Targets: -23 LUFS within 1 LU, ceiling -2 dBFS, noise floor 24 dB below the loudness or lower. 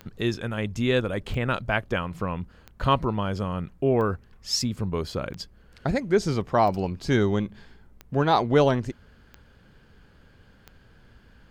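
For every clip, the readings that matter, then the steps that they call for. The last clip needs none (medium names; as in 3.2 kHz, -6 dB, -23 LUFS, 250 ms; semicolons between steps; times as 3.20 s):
clicks found 9; loudness -26.0 LUFS; peak level -8.0 dBFS; loudness target -23.0 LUFS
-> de-click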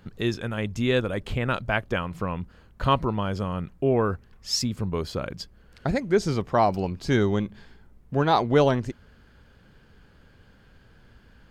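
clicks found 0; loudness -26.0 LUFS; peak level -8.0 dBFS; loudness target -23.0 LUFS
-> trim +3 dB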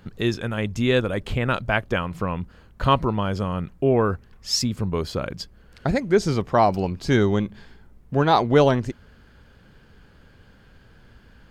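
loudness -23.0 LUFS; peak level -5.0 dBFS; noise floor -52 dBFS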